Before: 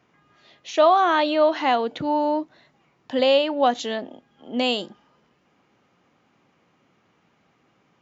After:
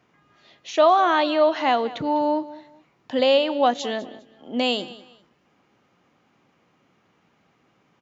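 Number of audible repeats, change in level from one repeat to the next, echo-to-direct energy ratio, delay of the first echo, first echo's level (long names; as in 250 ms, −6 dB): 2, −11.5 dB, −17.5 dB, 202 ms, −18.0 dB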